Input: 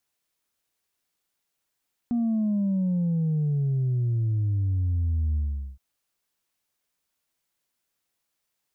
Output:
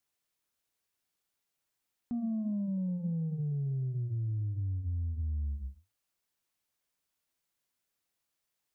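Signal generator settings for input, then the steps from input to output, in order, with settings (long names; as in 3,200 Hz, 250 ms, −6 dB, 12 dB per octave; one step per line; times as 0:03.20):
bass drop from 240 Hz, over 3.67 s, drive 1 dB, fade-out 0.42 s, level −22 dB
parametric band 99 Hz +2.5 dB 0.8 octaves
brickwall limiter −26 dBFS
flanger 1.5 Hz, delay 2.6 ms, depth 6.3 ms, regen −81%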